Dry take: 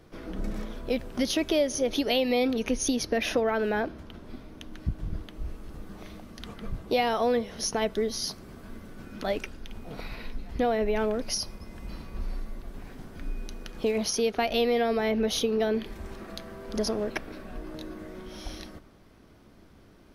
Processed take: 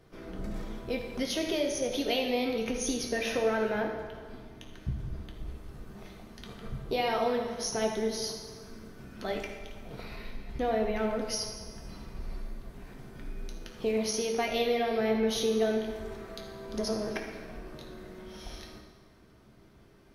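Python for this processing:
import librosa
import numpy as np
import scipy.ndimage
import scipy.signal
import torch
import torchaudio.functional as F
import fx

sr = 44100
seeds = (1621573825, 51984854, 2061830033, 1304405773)

y = fx.rev_fdn(x, sr, rt60_s=1.6, lf_ratio=0.7, hf_ratio=0.8, size_ms=45.0, drr_db=0.5)
y = F.gain(torch.from_numpy(y), -5.5).numpy()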